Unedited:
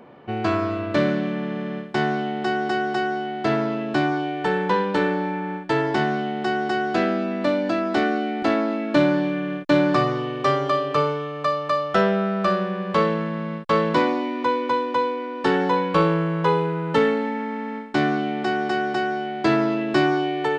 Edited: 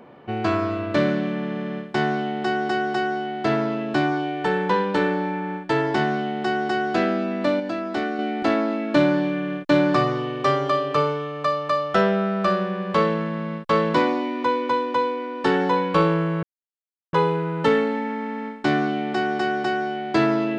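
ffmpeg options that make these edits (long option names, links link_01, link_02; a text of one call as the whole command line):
ffmpeg -i in.wav -filter_complex "[0:a]asplit=4[link_01][link_02][link_03][link_04];[link_01]atrim=end=7.602[link_05];[link_02]atrim=start=7.598:end=8.192,asetpts=PTS-STARTPTS,volume=-4.5dB[link_06];[link_03]atrim=start=8.188:end=16.43,asetpts=PTS-STARTPTS,afade=type=out:start_time=8.238:duration=0.004:curve=hsin,apad=pad_dur=0.7[link_07];[link_04]atrim=start=16.43,asetpts=PTS-STARTPTS,afade=type=in:duration=0.004:curve=hsin[link_08];[link_05][link_06]acrossfade=duration=0.004:curve1=hsin:curve2=hsin[link_09];[link_07][link_08]concat=n=2:v=0:a=1[link_10];[link_09][link_10]acrossfade=duration=0.004:curve1=hsin:curve2=hsin" out.wav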